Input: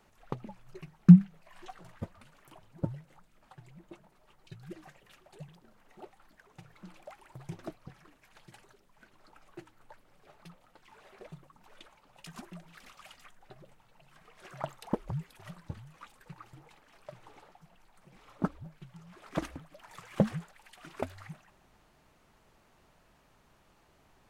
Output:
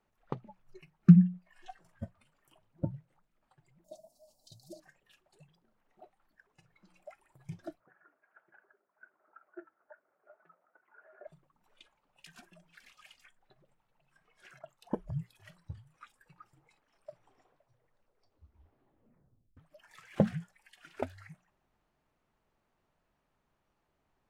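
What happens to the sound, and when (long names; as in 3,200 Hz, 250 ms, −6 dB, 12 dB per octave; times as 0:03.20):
0:03.84–0:04.80: drawn EQ curve 170 Hz 0 dB, 260 Hz +10 dB, 390 Hz −7 dB, 630 Hz +15 dB, 1,700 Hz −27 dB, 4,600 Hz +14 dB
0:07.80–0:11.27: loudspeaker in its box 330–2,000 Hz, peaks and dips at 380 Hz +5 dB, 640 Hz +8 dB, 1,400 Hz +9 dB
0:14.59–0:15.10: fade in, from −13.5 dB
0:17.10: tape stop 2.47 s
whole clip: high-shelf EQ 3,700 Hz −7.5 dB; mains-hum notches 60/120/180 Hz; noise reduction from a noise print of the clip's start 13 dB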